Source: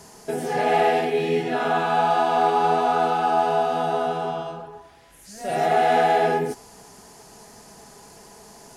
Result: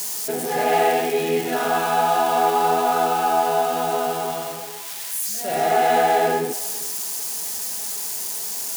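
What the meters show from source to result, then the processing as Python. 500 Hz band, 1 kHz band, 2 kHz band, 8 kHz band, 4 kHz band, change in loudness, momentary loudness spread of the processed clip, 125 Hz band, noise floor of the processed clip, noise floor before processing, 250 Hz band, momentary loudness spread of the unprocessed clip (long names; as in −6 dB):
+1.0 dB, +1.0 dB, +1.5 dB, +17.0 dB, +5.0 dB, +0.5 dB, 7 LU, −2.5 dB, −32 dBFS, −48 dBFS, 0.0 dB, 12 LU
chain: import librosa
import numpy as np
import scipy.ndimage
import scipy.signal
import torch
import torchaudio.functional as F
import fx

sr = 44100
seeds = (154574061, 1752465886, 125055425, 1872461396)

y = x + 0.5 * 10.0 ** (-22.0 / 20.0) * np.diff(np.sign(x), prepend=np.sign(x[:1]))
y = scipy.signal.sosfilt(scipy.signal.butter(2, 170.0, 'highpass', fs=sr, output='sos'), y)
y = y + 10.0 ** (-21.5 / 20.0) * np.pad(y, (int(405 * sr / 1000.0), 0))[:len(y)]
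y = y * librosa.db_to_amplitude(1.0)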